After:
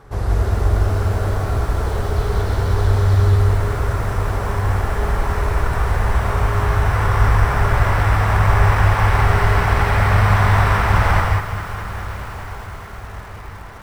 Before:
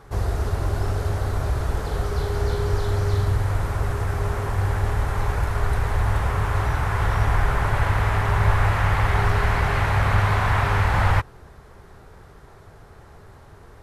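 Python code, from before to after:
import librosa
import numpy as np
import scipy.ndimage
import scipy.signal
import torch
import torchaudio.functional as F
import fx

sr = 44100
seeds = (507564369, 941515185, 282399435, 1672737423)

p1 = x + fx.echo_diffused(x, sr, ms=1196, feedback_pct=60, wet_db=-16.0, dry=0)
p2 = fx.rev_gated(p1, sr, seeds[0], gate_ms=210, shape='rising', drr_db=0.0)
p3 = fx.sample_hold(p2, sr, seeds[1], rate_hz=6900.0, jitter_pct=0)
p4 = p2 + F.gain(torch.from_numpy(p3), -11.5).numpy()
p5 = fx.high_shelf(p4, sr, hz=9600.0, db=-4.0)
p6 = fx.notch(p5, sr, hz=6700.0, q=25.0)
y = fx.echo_crushed(p6, sr, ms=208, feedback_pct=80, bits=6, wet_db=-13.5)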